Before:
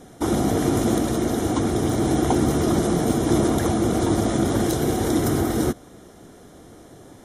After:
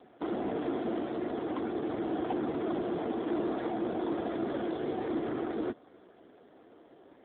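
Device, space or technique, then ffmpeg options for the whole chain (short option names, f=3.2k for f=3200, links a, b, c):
telephone: -af "highpass=310,lowpass=3.6k,asoftclip=type=tanh:threshold=-16.5dB,volume=-6.5dB" -ar 8000 -c:a libopencore_amrnb -b:a 7400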